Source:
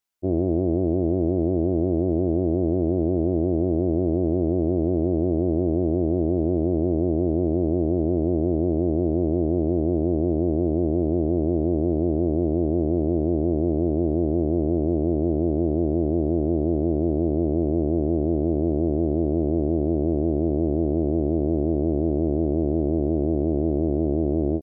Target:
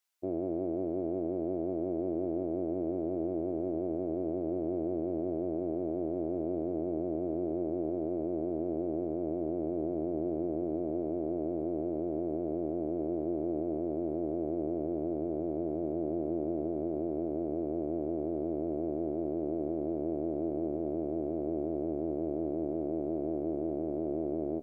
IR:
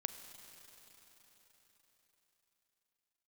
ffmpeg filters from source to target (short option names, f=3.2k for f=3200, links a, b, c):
-filter_complex "[0:a]highpass=f=710:p=1,alimiter=level_in=2.5dB:limit=-24dB:level=0:latency=1:release=17,volume=-2.5dB,asplit=2[a][b];[1:a]atrim=start_sample=2205,asetrate=28224,aresample=44100[c];[b][c]afir=irnorm=-1:irlink=0,volume=-6.5dB[d];[a][d]amix=inputs=2:normalize=0,volume=-2dB"